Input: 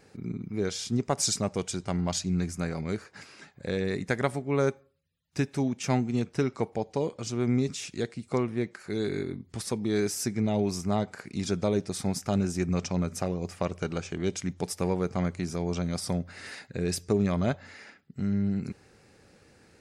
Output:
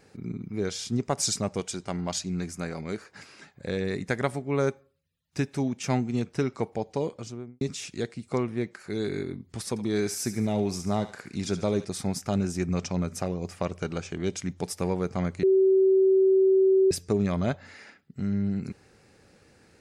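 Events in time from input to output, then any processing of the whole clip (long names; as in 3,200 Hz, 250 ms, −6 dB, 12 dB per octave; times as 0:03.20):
0:01.60–0:03.09: parametric band 100 Hz −7 dB 1.5 octaves
0:07.07–0:07.61: fade out and dull
0:09.69–0:11.85: feedback echo with a high-pass in the loop 72 ms, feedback 48%, high-pass 1,000 Hz, level −10 dB
0:15.43–0:16.91: beep over 382 Hz −16.5 dBFS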